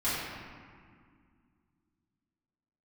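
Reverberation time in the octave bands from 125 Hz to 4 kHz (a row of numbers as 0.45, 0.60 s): 2.9, 3.1, 2.0, 2.0, 1.8, 1.2 s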